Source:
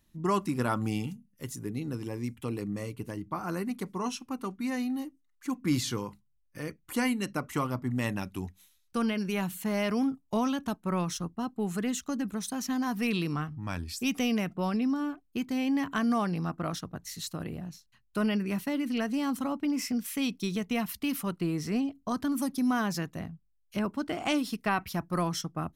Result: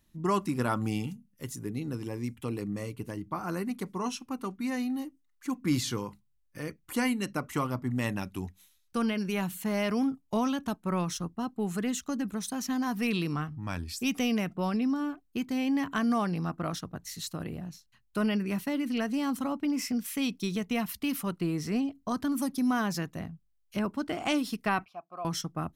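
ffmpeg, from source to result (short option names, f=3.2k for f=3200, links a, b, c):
-filter_complex "[0:a]asettb=1/sr,asplit=3[a][b][c];[a]atrim=end=24.854[d];[b]atrim=start=24.85:end=25.25,asetpts=PTS-STARTPTS,afade=t=in:d=0.004:c=qsin,afade=t=out:st=0.396:d=0.004:c=qsin,asplit=3[e][f][g];[e]bandpass=f=730:t=q:w=8,volume=0dB[h];[f]bandpass=f=1.09k:t=q:w=8,volume=-6dB[i];[g]bandpass=f=2.44k:t=q:w=8,volume=-9dB[j];[h][i][j]amix=inputs=3:normalize=0[k];[c]atrim=start=25.246[l];[d][k]acrossfade=d=0.004:c1=hsin:c2=qsin[m];[m][l]acrossfade=d=0.004:c1=qsin:c2=hsin"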